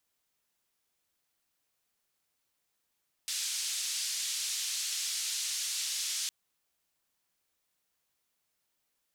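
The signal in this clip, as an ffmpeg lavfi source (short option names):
-f lavfi -i "anoisesrc=c=white:d=3.01:r=44100:seed=1,highpass=f=3800,lowpass=f=7000,volume=-21.6dB"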